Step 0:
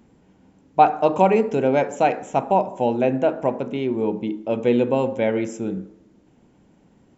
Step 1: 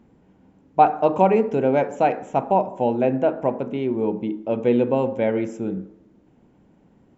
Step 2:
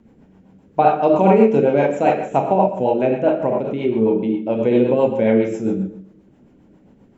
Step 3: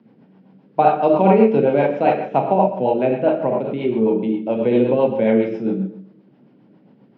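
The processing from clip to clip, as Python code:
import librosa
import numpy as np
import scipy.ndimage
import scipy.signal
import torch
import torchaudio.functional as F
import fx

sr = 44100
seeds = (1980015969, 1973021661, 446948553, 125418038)

y1 = fx.high_shelf(x, sr, hz=3400.0, db=-11.0)
y2 = fx.rev_schroeder(y1, sr, rt60_s=0.55, comb_ms=28, drr_db=0.5)
y2 = fx.rotary(y2, sr, hz=7.5)
y2 = y2 * 10.0 ** (4.0 / 20.0)
y3 = scipy.signal.sosfilt(scipy.signal.cheby1(5, 1.0, [120.0, 5000.0], 'bandpass', fs=sr, output='sos'), y2)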